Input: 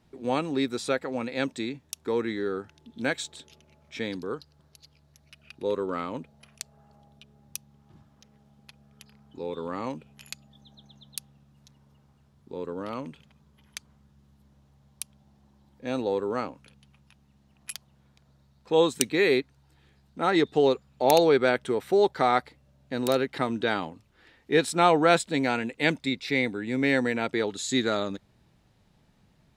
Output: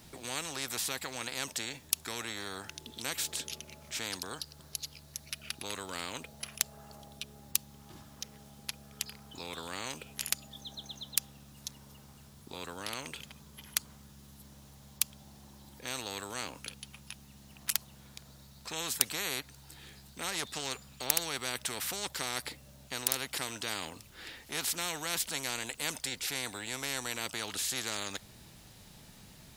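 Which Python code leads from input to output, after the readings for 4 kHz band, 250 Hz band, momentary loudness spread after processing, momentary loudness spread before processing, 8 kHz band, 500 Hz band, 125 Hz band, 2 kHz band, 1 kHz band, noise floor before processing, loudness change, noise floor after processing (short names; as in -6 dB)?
-0.5 dB, -17.5 dB, 21 LU, 20 LU, +5.0 dB, -19.5 dB, -10.0 dB, -7.5 dB, -13.5 dB, -63 dBFS, -9.5 dB, -56 dBFS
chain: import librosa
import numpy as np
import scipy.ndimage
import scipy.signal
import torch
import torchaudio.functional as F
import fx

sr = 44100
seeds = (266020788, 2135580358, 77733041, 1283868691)

y = librosa.effects.preemphasis(x, coef=0.8, zi=[0.0])
y = fx.spectral_comp(y, sr, ratio=4.0)
y = y * 10.0 ** (2.5 / 20.0)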